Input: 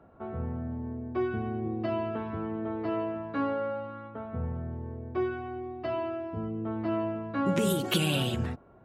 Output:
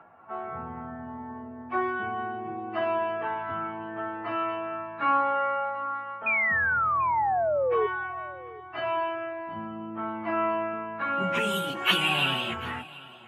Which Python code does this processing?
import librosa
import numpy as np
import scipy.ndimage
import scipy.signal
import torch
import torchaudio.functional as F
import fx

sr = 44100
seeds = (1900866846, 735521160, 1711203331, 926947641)

y = scipy.signal.sosfilt(scipy.signal.butter(2, 110.0, 'highpass', fs=sr, output='sos'), x)
y = fx.band_shelf(y, sr, hz=1500.0, db=15.5, octaves=2.4)
y = fx.stretch_vocoder_free(y, sr, factor=1.5)
y = fx.spec_paint(y, sr, seeds[0], shape='fall', start_s=6.26, length_s=1.61, low_hz=410.0, high_hz=2500.0, level_db=-22.0)
y = y + 10.0 ** (-20.0 / 20.0) * np.pad(y, (int(738 * sr / 1000.0), 0))[:len(y)]
y = y * 10.0 ** (-3.0 / 20.0)